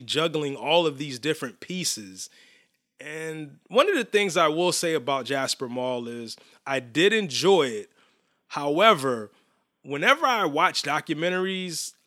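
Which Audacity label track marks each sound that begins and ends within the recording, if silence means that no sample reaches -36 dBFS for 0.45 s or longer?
3.000000	7.840000	sound
8.520000	9.260000	sound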